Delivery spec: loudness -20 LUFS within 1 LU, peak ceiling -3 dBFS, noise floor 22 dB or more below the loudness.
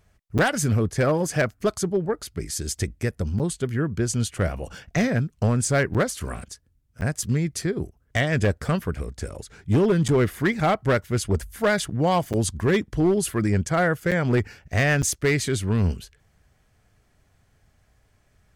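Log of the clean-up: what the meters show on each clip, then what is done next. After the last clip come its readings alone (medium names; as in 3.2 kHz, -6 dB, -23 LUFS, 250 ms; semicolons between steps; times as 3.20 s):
clipped samples 1.3%; clipping level -14.5 dBFS; dropouts 8; longest dropout 7.5 ms; loudness -24.0 LUFS; peak level -14.5 dBFS; loudness target -20.0 LUFS
-> clip repair -14.5 dBFS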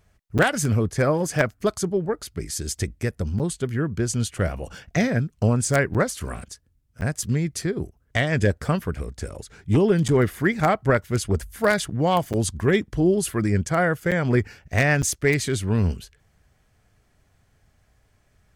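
clipped samples 0.0%; dropouts 8; longest dropout 7.5 ms
-> interpolate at 0.38/3.39/5.94/7.01/10.08/12.33/14.11/15.02 s, 7.5 ms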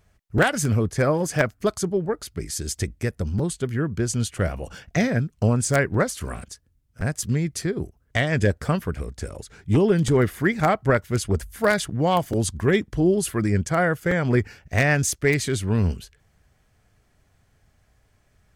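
dropouts 0; loudness -23.5 LUFS; peak level -5.5 dBFS; loudness target -20.0 LUFS
-> trim +3.5 dB; peak limiter -3 dBFS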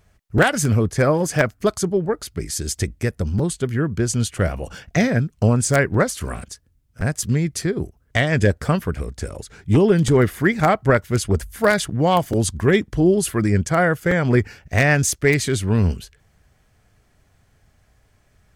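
loudness -20.0 LUFS; peak level -3.0 dBFS; noise floor -61 dBFS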